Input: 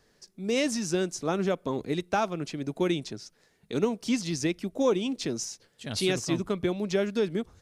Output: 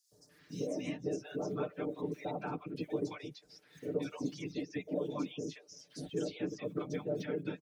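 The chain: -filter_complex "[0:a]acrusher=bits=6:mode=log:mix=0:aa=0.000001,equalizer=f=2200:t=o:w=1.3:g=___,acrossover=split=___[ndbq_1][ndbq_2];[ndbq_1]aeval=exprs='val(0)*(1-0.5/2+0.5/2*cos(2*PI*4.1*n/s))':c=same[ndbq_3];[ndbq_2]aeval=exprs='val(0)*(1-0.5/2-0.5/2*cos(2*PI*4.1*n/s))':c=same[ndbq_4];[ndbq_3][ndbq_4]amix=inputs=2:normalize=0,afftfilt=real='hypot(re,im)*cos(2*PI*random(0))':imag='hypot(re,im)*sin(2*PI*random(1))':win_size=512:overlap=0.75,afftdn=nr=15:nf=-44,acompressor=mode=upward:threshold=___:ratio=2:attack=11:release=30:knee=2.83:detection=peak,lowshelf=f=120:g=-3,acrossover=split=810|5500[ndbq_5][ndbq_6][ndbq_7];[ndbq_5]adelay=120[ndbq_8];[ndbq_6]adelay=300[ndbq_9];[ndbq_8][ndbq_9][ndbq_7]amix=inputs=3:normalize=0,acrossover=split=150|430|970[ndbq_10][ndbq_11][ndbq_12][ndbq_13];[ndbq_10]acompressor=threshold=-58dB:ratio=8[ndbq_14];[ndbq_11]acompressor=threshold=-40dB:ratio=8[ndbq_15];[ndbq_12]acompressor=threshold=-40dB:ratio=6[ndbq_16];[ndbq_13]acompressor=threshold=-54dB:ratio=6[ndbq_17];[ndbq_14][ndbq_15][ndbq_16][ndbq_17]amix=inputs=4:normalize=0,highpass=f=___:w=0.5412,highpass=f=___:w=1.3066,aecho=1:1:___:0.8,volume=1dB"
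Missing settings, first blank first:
5.5, 560, -43dB, 57, 57, 6.7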